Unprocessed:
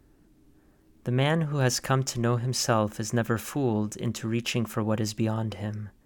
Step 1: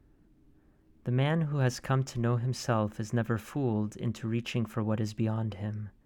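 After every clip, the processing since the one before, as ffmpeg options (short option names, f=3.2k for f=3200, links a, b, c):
-af "bass=f=250:g=4,treble=f=4k:g=-8,volume=-5.5dB"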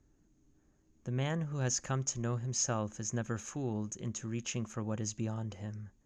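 -af "lowpass=f=6.6k:t=q:w=16,volume=-6.5dB"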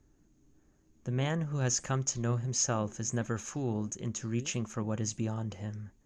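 -af "flanger=delay=2.2:depth=6.5:regen=87:speed=1.5:shape=sinusoidal,volume=7.5dB"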